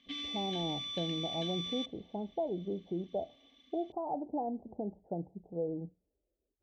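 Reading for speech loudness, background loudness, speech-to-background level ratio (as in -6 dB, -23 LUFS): -39.0 LUFS, -38.0 LUFS, -1.0 dB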